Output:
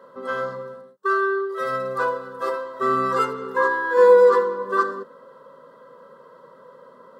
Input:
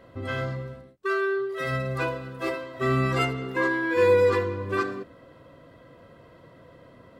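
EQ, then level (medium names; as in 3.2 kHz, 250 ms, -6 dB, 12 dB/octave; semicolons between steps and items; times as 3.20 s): high-pass 230 Hz 12 dB/octave; peaking EQ 910 Hz +10 dB 2.7 oct; static phaser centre 470 Hz, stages 8; 0.0 dB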